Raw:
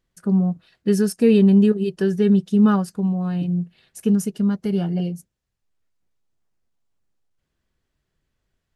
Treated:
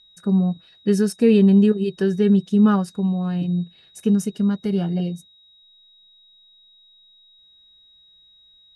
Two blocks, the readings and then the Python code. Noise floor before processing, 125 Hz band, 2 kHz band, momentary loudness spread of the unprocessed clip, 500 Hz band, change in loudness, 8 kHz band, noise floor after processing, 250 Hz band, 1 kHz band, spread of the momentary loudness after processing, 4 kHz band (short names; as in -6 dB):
-78 dBFS, 0.0 dB, 0.0 dB, 12 LU, 0.0 dB, 0.0 dB, -1.5 dB, -54 dBFS, 0.0 dB, 0.0 dB, 12 LU, n/a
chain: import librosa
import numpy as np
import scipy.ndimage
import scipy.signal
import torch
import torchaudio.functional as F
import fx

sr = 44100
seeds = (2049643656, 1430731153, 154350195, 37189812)

y = x + 10.0 ** (-51.0 / 20.0) * np.sin(2.0 * np.pi * 3800.0 * np.arange(len(x)) / sr)
y = scipy.signal.sosfilt(scipy.signal.butter(2, 10000.0, 'lowpass', fs=sr, output='sos'), y)